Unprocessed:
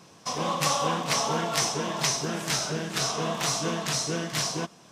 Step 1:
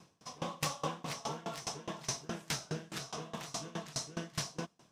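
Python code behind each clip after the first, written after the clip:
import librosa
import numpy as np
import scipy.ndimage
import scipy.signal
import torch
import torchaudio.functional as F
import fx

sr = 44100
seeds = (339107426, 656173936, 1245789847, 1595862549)

y = fx.low_shelf(x, sr, hz=140.0, db=7.0)
y = np.clip(10.0 ** (15.5 / 20.0) * y, -1.0, 1.0) / 10.0 ** (15.5 / 20.0)
y = fx.tremolo_decay(y, sr, direction='decaying', hz=4.8, depth_db=24)
y = y * librosa.db_to_amplitude(-6.0)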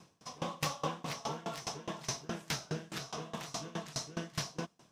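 y = fx.dynamic_eq(x, sr, hz=8600.0, q=1.5, threshold_db=-55.0, ratio=4.0, max_db=-6)
y = y * librosa.db_to_amplitude(1.0)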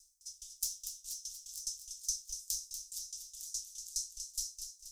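y = scipy.signal.sosfilt(scipy.signal.cheby2(4, 70, [160.0, 1700.0], 'bandstop', fs=sr, output='sos'), x)
y = fx.echo_feedback(y, sr, ms=239, feedback_pct=48, wet_db=-8)
y = y * librosa.db_to_amplitude(10.0)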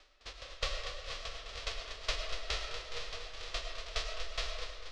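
y = fx.envelope_flatten(x, sr, power=0.1)
y = scipy.signal.sosfilt(scipy.signal.butter(4, 4400.0, 'lowpass', fs=sr, output='sos'), y)
y = fx.rev_freeverb(y, sr, rt60_s=1.2, hf_ratio=0.35, predelay_ms=65, drr_db=4.5)
y = y * librosa.db_to_amplitude(8.0)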